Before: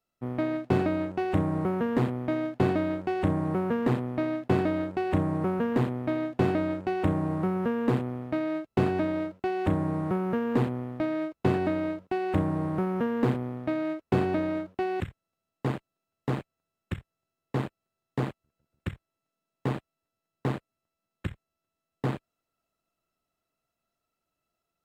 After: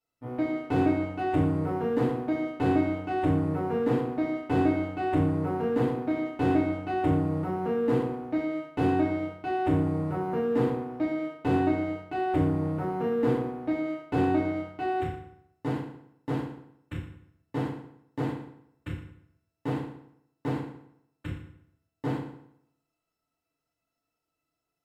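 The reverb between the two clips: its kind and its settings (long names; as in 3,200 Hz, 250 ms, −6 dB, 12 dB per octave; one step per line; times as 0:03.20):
feedback delay network reverb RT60 0.73 s, low-frequency decay 1×, high-frequency decay 0.8×, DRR −7 dB
level −9 dB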